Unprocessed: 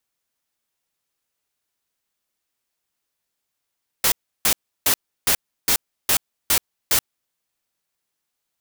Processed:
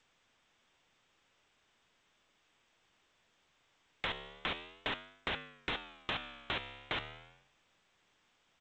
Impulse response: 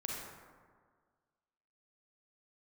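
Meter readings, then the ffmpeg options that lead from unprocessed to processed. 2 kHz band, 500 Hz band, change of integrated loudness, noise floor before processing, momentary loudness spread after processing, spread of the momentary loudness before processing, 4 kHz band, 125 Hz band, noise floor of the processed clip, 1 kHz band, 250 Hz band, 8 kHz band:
-9.5 dB, -9.5 dB, -18.5 dB, -80 dBFS, 1 LU, 1 LU, -13.5 dB, -9.0 dB, -74 dBFS, -9.5 dB, -9.5 dB, under -40 dB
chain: -af "flanger=delay=9.6:depth=5.4:regen=-87:speed=0.38:shape=sinusoidal,acontrast=26,aresample=8000,asoftclip=type=tanh:threshold=0.0355,aresample=44100,acompressor=threshold=0.00178:ratio=2.5,volume=3.76" -ar 16000 -c:a g722

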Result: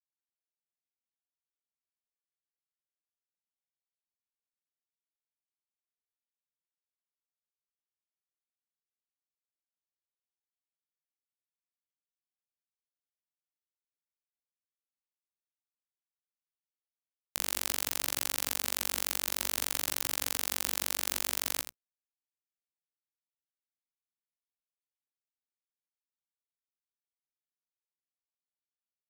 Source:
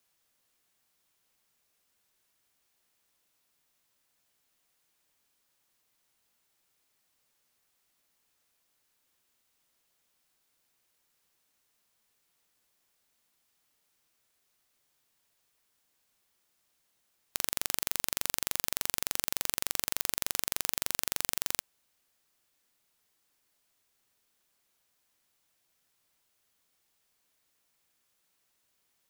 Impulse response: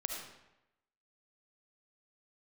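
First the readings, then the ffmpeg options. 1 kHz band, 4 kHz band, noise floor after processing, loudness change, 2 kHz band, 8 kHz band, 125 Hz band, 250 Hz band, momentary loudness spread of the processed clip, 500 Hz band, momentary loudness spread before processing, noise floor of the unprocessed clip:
+0.5 dB, +0.5 dB, under -85 dBFS, 0.0 dB, +0.5 dB, 0.0 dB, -2.5 dB, +1.0 dB, 3 LU, +0.5 dB, 2 LU, -76 dBFS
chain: -af "bandreject=f=60:t=h:w=6,bandreject=f=120:t=h:w=6,bandreject=f=180:t=h:w=6,acrusher=bits=9:mix=0:aa=0.000001,flanger=delay=17.5:depth=3.1:speed=0.55,aecho=1:1:82:0.299,volume=1.41"

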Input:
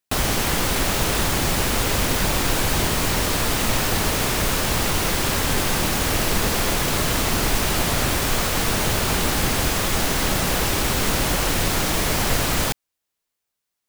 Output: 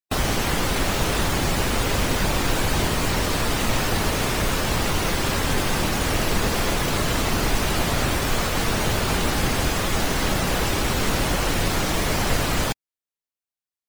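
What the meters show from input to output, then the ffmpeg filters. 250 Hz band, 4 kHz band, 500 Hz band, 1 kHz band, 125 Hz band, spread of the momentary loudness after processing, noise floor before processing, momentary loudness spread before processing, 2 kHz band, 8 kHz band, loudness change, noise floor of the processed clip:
0.0 dB, -2.5 dB, 0.0 dB, -0.5 dB, 0.0 dB, 1 LU, -81 dBFS, 0 LU, -1.0 dB, -4.5 dB, -2.0 dB, under -85 dBFS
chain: -af "afftdn=nr=15:nf=-31"

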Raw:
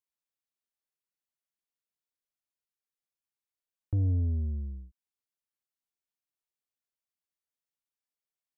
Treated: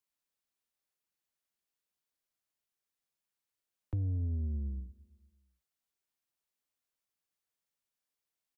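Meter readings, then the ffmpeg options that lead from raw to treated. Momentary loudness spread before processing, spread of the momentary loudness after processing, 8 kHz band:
13 LU, 10 LU, no reading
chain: -filter_complex "[0:a]acrossover=split=110|260[s0][s1][s2];[s0]acompressor=threshold=0.0112:ratio=4[s3];[s1]acompressor=threshold=0.00631:ratio=4[s4];[s2]acompressor=threshold=0.00158:ratio=4[s5];[s3][s4][s5]amix=inputs=3:normalize=0,asplit=2[s6][s7];[s7]aecho=0:1:231|462|693:0.0668|0.0341|0.0174[s8];[s6][s8]amix=inputs=2:normalize=0,volume=1.41"

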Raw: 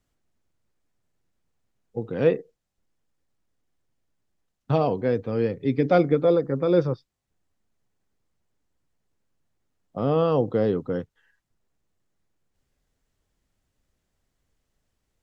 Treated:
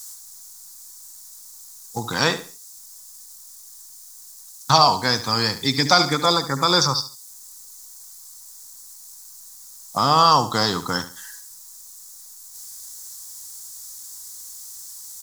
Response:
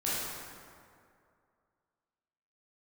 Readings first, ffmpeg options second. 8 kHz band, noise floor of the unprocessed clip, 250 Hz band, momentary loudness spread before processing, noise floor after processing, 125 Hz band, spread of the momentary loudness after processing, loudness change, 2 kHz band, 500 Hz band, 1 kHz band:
no reading, -79 dBFS, -1.5 dB, 12 LU, -44 dBFS, 0.0 dB, 21 LU, +4.5 dB, +13.5 dB, -4.5 dB, +13.5 dB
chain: -filter_complex "[0:a]lowshelf=f=690:t=q:w=3:g=-11.5,aexciter=amount=11.4:drive=9.7:freq=4400,asplit=2[s0][s1];[s1]acompressor=threshold=0.00631:ratio=6,volume=1.41[s2];[s0][s2]amix=inputs=2:normalize=0,aecho=1:1:71|142|213:0.224|0.0649|0.0188,alimiter=level_in=3.55:limit=0.891:release=50:level=0:latency=1,volume=0.891"

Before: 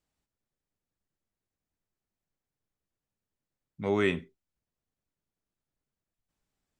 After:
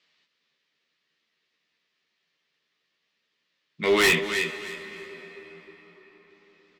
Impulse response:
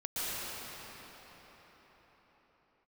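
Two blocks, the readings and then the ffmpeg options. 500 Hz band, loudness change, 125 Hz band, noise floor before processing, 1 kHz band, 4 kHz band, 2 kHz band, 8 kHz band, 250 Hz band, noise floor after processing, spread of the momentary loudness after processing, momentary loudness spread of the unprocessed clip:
+6.5 dB, +7.0 dB, -0.5 dB, under -85 dBFS, +8.5 dB, +17.0 dB, +13.5 dB, no reading, +2.0 dB, -77 dBFS, 22 LU, 10 LU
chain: -filter_complex "[0:a]highpass=150,equalizer=f=180:t=q:w=4:g=6,equalizer=f=420:t=q:w=4:g=4,equalizer=f=790:t=q:w=4:g=-6,equalizer=f=1200:t=q:w=4:g=5,equalizer=f=1800:t=q:w=4:g=10,lowpass=f=4400:w=0.5412,lowpass=f=4400:w=1.3066,asplit=2[s0][s1];[s1]highpass=f=720:p=1,volume=7.94,asoftclip=type=tanh:threshold=0.335[s2];[s0][s2]amix=inputs=2:normalize=0,lowpass=f=2900:p=1,volume=0.501,aexciter=amount=2.6:drive=9.6:freq=2300,asplit=2[s3][s4];[s4]adelay=13,volume=0.631[s5];[s3][s5]amix=inputs=2:normalize=0,aecho=1:1:314|628|942:0.282|0.0705|0.0176,asplit=2[s6][s7];[1:a]atrim=start_sample=2205,asetrate=42777,aresample=44100,adelay=78[s8];[s7][s8]afir=irnorm=-1:irlink=0,volume=0.0794[s9];[s6][s9]amix=inputs=2:normalize=0,asoftclip=type=hard:threshold=0.211,volume=0.841"

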